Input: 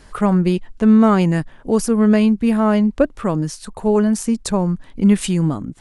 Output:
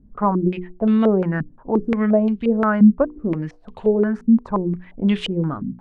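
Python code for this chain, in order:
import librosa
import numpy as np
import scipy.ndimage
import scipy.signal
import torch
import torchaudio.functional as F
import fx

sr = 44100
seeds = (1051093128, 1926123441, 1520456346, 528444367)

y = fx.hum_notches(x, sr, base_hz=60, count=8)
y = fx.filter_held_lowpass(y, sr, hz=5.7, low_hz=220.0, high_hz=3200.0)
y = F.gain(torch.from_numpy(y), -5.5).numpy()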